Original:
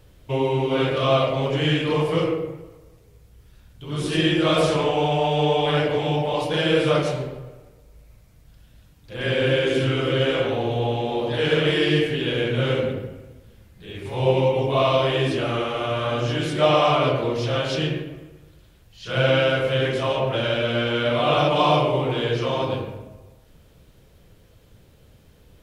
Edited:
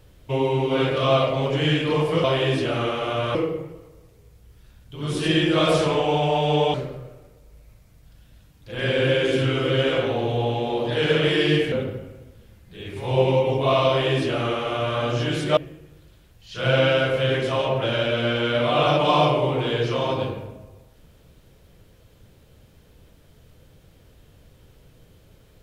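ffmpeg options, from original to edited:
ffmpeg -i in.wav -filter_complex "[0:a]asplit=6[link_01][link_02][link_03][link_04][link_05][link_06];[link_01]atrim=end=2.242[link_07];[link_02]atrim=start=14.968:end=16.082[link_08];[link_03]atrim=start=2.238:end=5.632[link_09];[link_04]atrim=start=7.158:end=12.142[link_10];[link_05]atrim=start=12.808:end=16.662[link_11];[link_06]atrim=start=18.078[link_12];[link_07][link_08]acrossfade=duration=0.004:curve1=hsin:curve2=hsin[link_13];[link_13][link_09]acrossfade=duration=0.004:curve1=hsin:curve2=hsin[link_14];[link_14][link_10]acrossfade=duration=0.004:curve1=hsin:curve2=hsin[link_15];[link_15][link_11]acrossfade=duration=0.004:curve1=hsin:curve2=hsin[link_16];[link_16][link_12]acrossfade=duration=0.004:curve1=hsin:curve2=hsin" out.wav

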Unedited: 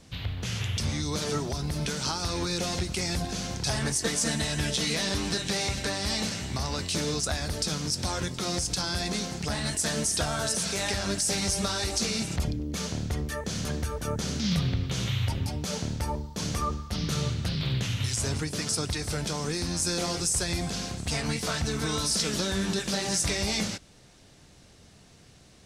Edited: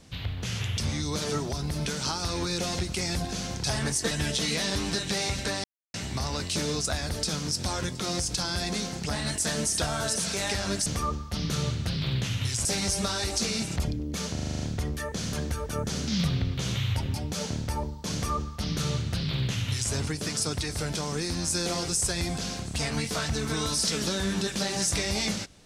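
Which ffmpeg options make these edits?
ffmpeg -i in.wav -filter_complex "[0:a]asplit=13[link_01][link_02][link_03][link_04][link_05][link_06][link_07][link_08][link_09][link_10][link_11][link_12][link_13];[link_01]atrim=end=4.112[link_14];[link_02]atrim=start=4.498:end=6.03,asetpts=PTS-STARTPTS,afade=type=out:start_time=1.528:duration=0.004:curve=hsin[link_15];[link_03]atrim=start=6.03:end=6.33,asetpts=PTS-STARTPTS,volume=0[link_16];[link_04]atrim=start=6.33:end=11.252,asetpts=PTS-STARTPTS,afade=type=in:duration=0.004:curve=hsin[link_17];[link_05]atrim=start=16.448:end=18.242[link_18];[link_06]atrim=start=11.248:end=12.972[link_19];[link_07]atrim=start=12.928:end=12.972[link_20];[link_08]atrim=start=12.928:end=12.972[link_21];[link_09]atrim=start=12.928:end=12.972[link_22];[link_10]atrim=start=12.928:end=12.972[link_23];[link_11]atrim=start=12.928:end=12.972[link_24];[link_12]atrim=start=12.928:end=12.972[link_25];[link_13]atrim=start=12.928[link_26];[link_15][link_16][link_17]concat=n=3:v=0:a=1[link_27];[link_14][link_27]acrossfade=duration=0.004:curve1=hsin:curve2=hsin[link_28];[link_28][link_18]acrossfade=duration=0.004:curve1=hsin:curve2=hsin[link_29];[link_29][link_19]acrossfade=duration=0.004:curve1=hsin:curve2=hsin[link_30];[link_30][link_20]acrossfade=duration=0.004:curve1=hsin:curve2=hsin[link_31];[link_31][link_21]acrossfade=duration=0.004:curve1=hsin:curve2=hsin[link_32];[link_32][link_22]acrossfade=duration=0.004:curve1=hsin:curve2=hsin[link_33];[link_33][link_23]acrossfade=duration=0.004:curve1=hsin:curve2=hsin[link_34];[link_34][link_24]acrossfade=duration=0.004:curve1=hsin:curve2=hsin[link_35];[link_35][link_25]acrossfade=duration=0.004:curve1=hsin:curve2=hsin[link_36];[link_36][link_26]acrossfade=duration=0.004:curve1=hsin:curve2=hsin" out.wav

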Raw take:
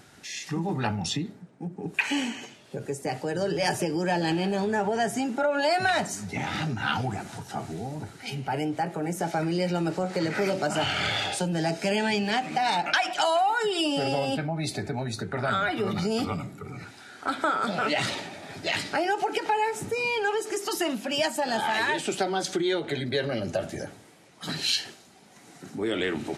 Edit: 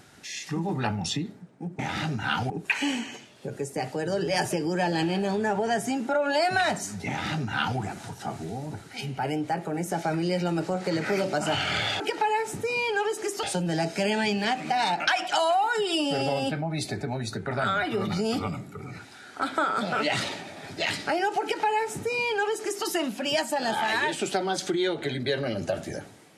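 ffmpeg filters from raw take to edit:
ffmpeg -i in.wav -filter_complex "[0:a]asplit=5[link_01][link_02][link_03][link_04][link_05];[link_01]atrim=end=1.792[link_06];[link_02]atrim=start=6.368:end=7.082[link_07];[link_03]atrim=start=1.788:end=11.292[link_08];[link_04]atrim=start=19.278:end=20.712[link_09];[link_05]atrim=start=11.288[link_10];[link_06][link_07]acrossfade=duration=0.004:curve1=hsin:curve2=hsin[link_11];[link_11][link_08]acrossfade=duration=0.004:curve1=hsin:curve2=hsin[link_12];[link_12][link_09]acrossfade=duration=0.004:curve1=hsin:curve2=hsin[link_13];[link_13][link_10]acrossfade=duration=0.004:curve1=hsin:curve2=hsin" out.wav

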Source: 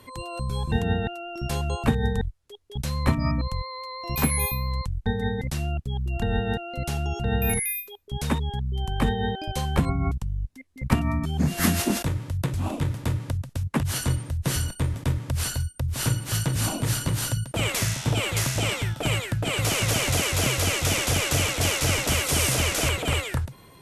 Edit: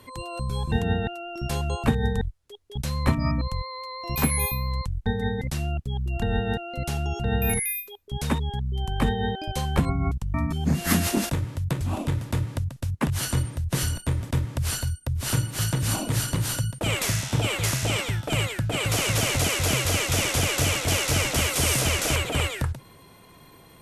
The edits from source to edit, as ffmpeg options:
ffmpeg -i in.wav -filter_complex "[0:a]asplit=2[link_01][link_02];[link_01]atrim=end=10.342[link_03];[link_02]atrim=start=11.068[link_04];[link_03][link_04]acrossfade=duration=0.004:curve1=hsin:curve2=hsin" out.wav

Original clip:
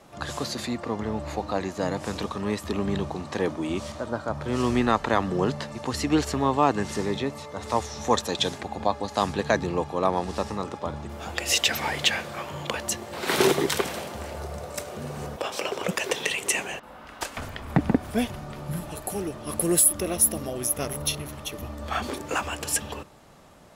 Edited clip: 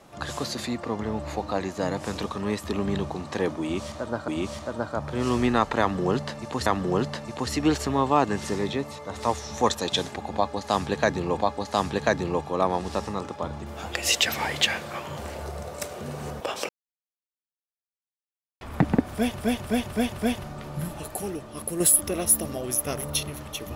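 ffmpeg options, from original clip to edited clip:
ffmpeg -i in.wav -filter_complex "[0:a]asplit=12[link_01][link_02][link_03][link_04][link_05][link_06][link_07][link_08][link_09][link_10][link_11][link_12];[link_01]atrim=end=4.282[link_13];[link_02]atrim=start=3.608:end=5.992[link_14];[link_03]atrim=start=5.128:end=9.852[link_15];[link_04]atrim=start=8.808:end=12.602[link_16];[link_05]atrim=start=14.128:end=15.65,asetpts=PTS-STARTPTS,afade=type=out:start_time=1.518:duration=0.004:curve=hsin[link_17];[link_06]atrim=start=15.65:end=17.57,asetpts=PTS-STARTPTS,volume=0[link_18];[link_07]atrim=start=17.57:end=18.352,asetpts=PTS-STARTPTS,afade=type=in:duration=0.004:curve=hsin[link_19];[link_08]atrim=start=18.088:end=18.352[link_20];[link_09]atrim=start=18.088:end=18.352[link_21];[link_10]atrim=start=18.088:end=18.352[link_22];[link_11]atrim=start=18.088:end=19.72,asetpts=PTS-STARTPTS,afade=type=out:start_time=0.892:duration=0.74:silence=0.446684[link_23];[link_12]atrim=start=19.72,asetpts=PTS-STARTPTS,afade=type=in:duration=0.004:curve=hsin:silence=0.446684[link_24];[link_13][link_14]acrossfade=duration=0.004:curve1=hsin:curve2=hsin[link_25];[link_25][link_15]acrossfade=duration=0.004:curve1=hsin:curve2=hsin[link_26];[link_26][link_16]acrossfade=duration=0.004:curve1=hsin:curve2=hsin[link_27];[link_17][link_18][link_19]concat=n=3:v=0:a=1[link_28];[link_27][link_28]acrossfade=duration=0.004:curve1=hsin:curve2=hsin[link_29];[link_29][link_20]acrossfade=duration=0.004:curve1=hsin:curve2=hsin[link_30];[link_30][link_21]acrossfade=duration=0.004:curve1=hsin:curve2=hsin[link_31];[link_31][link_22]acrossfade=duration=0.004:curve1=hsin:curve2=hsin[link_32];[link_23][link_24]concat=n=2:v=0:a=1[link_33];[link_32][link_33]acrossfade=duration=0.004:curve1=hsin:curve2=hsin" out.wav

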